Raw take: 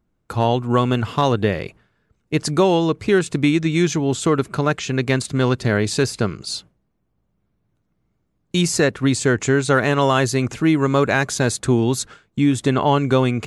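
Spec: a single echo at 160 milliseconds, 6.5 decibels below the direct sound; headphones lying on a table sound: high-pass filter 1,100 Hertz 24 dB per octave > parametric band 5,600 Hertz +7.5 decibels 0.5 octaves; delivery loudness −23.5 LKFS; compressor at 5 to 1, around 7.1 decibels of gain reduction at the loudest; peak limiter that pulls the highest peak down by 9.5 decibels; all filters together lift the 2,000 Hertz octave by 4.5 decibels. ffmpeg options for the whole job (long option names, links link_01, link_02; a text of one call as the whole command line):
ffmpeg -i in.wav -af "equalizer=frequency=2000:width_type=o:gain=6,acompressor=threshold=-19dB:ratio=5,alimiter=limit=-17.5dB:level=0:latency=1,highpass=frequency=1100:width=0.5412,highpass=frequency=1100:width=1.3066,equalizer=frequency=5600:width_type=o:width=0.5:gain=7.5,aecho=1:1:160:0.473,volume=5.5dB" out.wav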